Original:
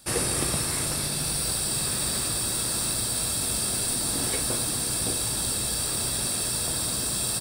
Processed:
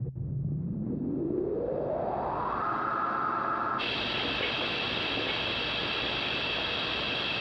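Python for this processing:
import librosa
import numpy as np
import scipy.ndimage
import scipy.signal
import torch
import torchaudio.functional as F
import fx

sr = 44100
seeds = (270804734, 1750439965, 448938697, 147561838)

p1 = fx.block_reorder(x, sr, ms=94.0, group=2)
p2 = scipy.signal.sosfilt(scipy.signal.butter(2, 44.0, 'highpass', fs=sr, output='sos'), p1)
p3 = p2 + fx.echo_single(p2, sr, ms=859, db=-4.5, dry=0)
p4 = fx.filter_sweep_lowpass(p3, sr, from_hz=130.0, to_hz=3000.0, start_s=0.31, end_s=3.55, q=5.1)
p5 = fx.bass_treble(p4, sr, bass_db=-10, treble_db=-11)
p6 = 10.0 ** (-30.5 / 20.0) * np.tanh(p5 / 10.0 ** (-30.5 / 20.0))
p7 = p5 + F.gain(torch.from_numpy(p6), -11.0).numpy()
p8 = scipy.signal.sosfilt(scipy.signal.butter(4, 5200.0, 'lowpass', fs=sr, output='sos'), p7)
p9 = fx.spec_freeze(p8, sr, seeds[0], at_s=2.64, hold_s=1.15)
p10 = fx.env_flatten(p9, sr, amount_pct=50)
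y = F.gain(torch.from_numpy(p10), -3.5).numpy()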